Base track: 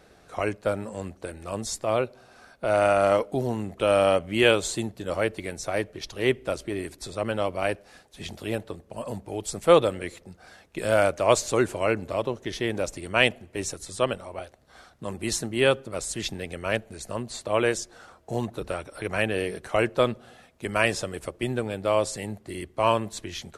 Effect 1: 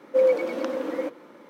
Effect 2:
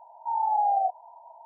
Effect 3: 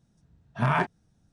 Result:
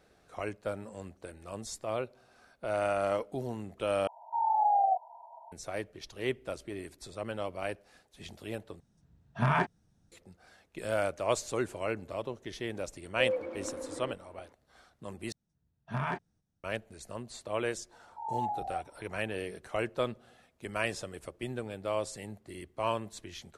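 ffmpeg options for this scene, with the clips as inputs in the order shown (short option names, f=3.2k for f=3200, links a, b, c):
-filter_complex "[2:a]asplit=2[a][b];[3:a]asplit=2[c][d];[0:a]volume=-9.5dB[e];[1:a]aemphasis=mode=reproduction:type=75kf[f];[d]agate=range=-7dB:threshold=-56dB:ratio=16:release=243:detection=peak[g];[b]aecho=1:1:6.9:0.59[h];[e]asplit=4[i][j][k][l];[i]atrim=end=4.074[m];[a]atrim=end=1.45,asetpts=PTS-STARTPTS,volume=-2dB[n];[j]atrim=start=5.516:end=8.804[o];[c]atrim=end=1.32,asetpts=PTS-STARTPTS,volume=-3dB[p];[k]atrim=start=10.116:end=15.324[q];[g]atrim=end=1.32,asetpts=PTS-STARTPTS,volume=-9.5dB[r];[l]atrim=start=16.636[s];[f]atrim=end=1.49,asetpts=PTS-STARTPTS,volume=-11.5dB,afade=t=in:d=0.004:c=hsin,afade=t=out:st=1.486:d=0.004:c=hsin,adelay=13040[t];[h]atrim=end=1.45,asetpts=PTS-STARTPTS,volume=-12dB,afade=t=in:d=0.004:c=hsin,afade=t=out:st=1.446:d=0.004:c=hsin,adelay=17910[u];[m][n]acrossfade=d=0.004:c1=hsin:c2=hsin[v];[v][o]acrossfade=d=0.004:c1=hsin:c2=hsin[w];[w][p]acrossfade=d=0.004:c1=hsin:c2=hsin[x];[x][q]acrossfade=d=0.004:c1=hsin:c2=hsin[y];[y][r]acrossfade=d=0.004:c1=hsin:c2=hsin[z];[z][s]acrossfade=d=0.004:c1=hsin:c2=hsin[aa];[aa][t][u]amix=inputs=3:normalize=0"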